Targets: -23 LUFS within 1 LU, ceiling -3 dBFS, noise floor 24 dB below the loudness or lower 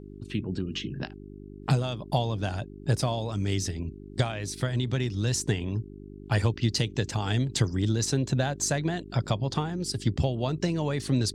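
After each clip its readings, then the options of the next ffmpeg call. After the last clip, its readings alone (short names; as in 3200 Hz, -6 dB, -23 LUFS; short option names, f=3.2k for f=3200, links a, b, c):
hum 50 Hz; harmonics up to 400 Hz; hum level -42 dBFS; loudness -29.0 LUFS; peak -11.5 dBFS; loudness target -23.0 LUFS
-> -af "bandreject=f=50:t=h:w=4,bandreject=f=100:t=h:w=4,bandreject=f=150:t=h:w=4,bandreject=f=200:t=h:w=4,bandreject=f=250:t=h:w=4,bandreject=f=300:t=h:w=4,bandreject=f=350:t=h:w=4,bandreject=f=400:t=h:w=4"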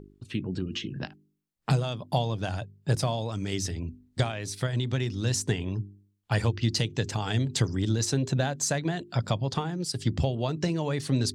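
hum none; loudness -29.5 LUFS; peak -12.5 dBFS; loudness target -23.0 LUFS
-> -af "volume=6.5dB"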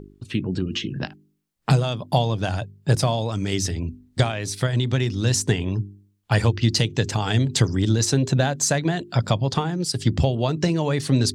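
loudness -23.0 LUFS; peak -6.0 dBFS; noise floor -63 dBFS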